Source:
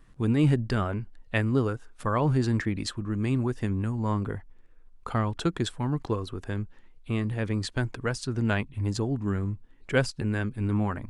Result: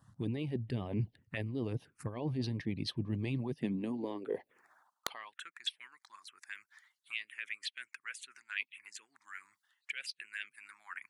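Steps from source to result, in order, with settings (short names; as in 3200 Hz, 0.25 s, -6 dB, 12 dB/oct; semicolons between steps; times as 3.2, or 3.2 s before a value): recorder AGC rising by 16 dB/s; harmonic-percussive split harmonic -16 dB; reverse; compressor 16:1, threshold -38 dBFS, peak gain reduction 19.5 dB; reverse; high-pass sweep 110 Hz -> 2300 Hz, 3.27–5.62; envelope phaser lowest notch 380 Hz, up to 1400 Hz, full sweep at -38 dBFS; wrapped overs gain 24.5 dB; gain +4.5 dB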